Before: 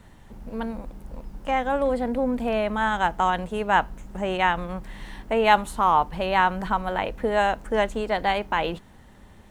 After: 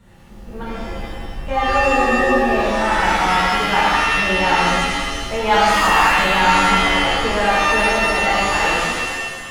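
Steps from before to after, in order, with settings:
reverb with rising layers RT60 1.5 s, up +7 semitones, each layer −2 dB, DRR −8 dB
level −4.5 dB

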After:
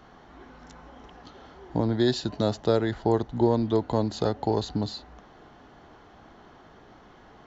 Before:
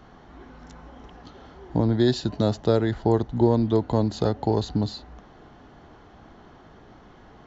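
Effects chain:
low-shelf EQ 280 Hz −6 dB

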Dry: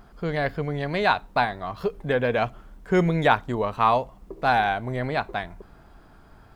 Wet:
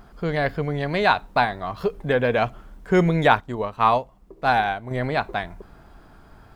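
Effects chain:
0:03.40–0:04.91: expander for the loud parts 1.5 to 1, over −34 dBFS
level +2.5 dB

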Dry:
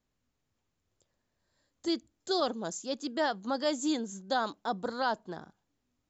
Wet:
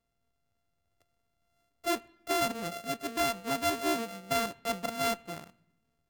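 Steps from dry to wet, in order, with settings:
samples sorted by size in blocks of 64 samples
0:02.62–0:03.17: notch filter 940 Hz, Q 6
on a send: parametric band 430 Hz −10 dB 2.9 octaves + convolution reverb RT60 0.95 s, pre-delay 6 ms, DRR 20 dB

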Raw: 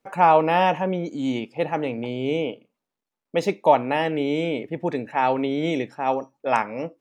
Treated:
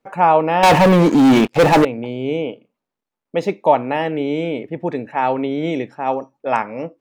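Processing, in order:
high-shelf EQ 3,600 Hz −8 dB
0:00.63–0:01.85: leveller curve on the samples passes 5
level +3 dB

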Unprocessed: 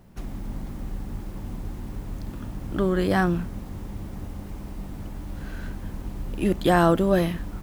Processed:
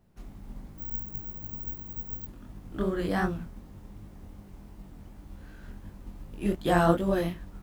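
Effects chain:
chorus effect 2.7 Hz, delay 19 ms, depth 6.2 ms
0:00.78–0:02.27: bad sample-rate conversion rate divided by 2×, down filtered, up zero stuff
expander for the loud parts 1.5 to 1, over −36 dBFS

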